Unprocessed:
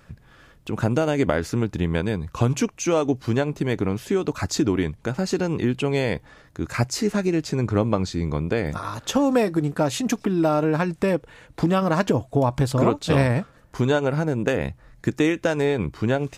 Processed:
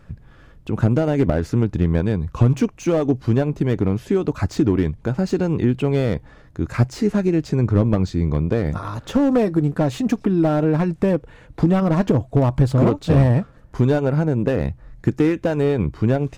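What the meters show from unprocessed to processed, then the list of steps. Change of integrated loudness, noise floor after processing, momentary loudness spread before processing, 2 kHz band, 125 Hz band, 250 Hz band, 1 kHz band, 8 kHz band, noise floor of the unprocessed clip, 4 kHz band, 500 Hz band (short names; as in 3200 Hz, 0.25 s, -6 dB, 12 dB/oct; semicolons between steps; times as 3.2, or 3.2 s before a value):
+3.5 dB, -48 dBFS, 7 LU, -3.5 dB, +6.0 dB, +4.0 dB, -1.5 dB, n/a, -54 dBFS, -5.5 dB, +1.5 dB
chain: tilt -2 dB/oct; slew limiter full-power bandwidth 110 Hz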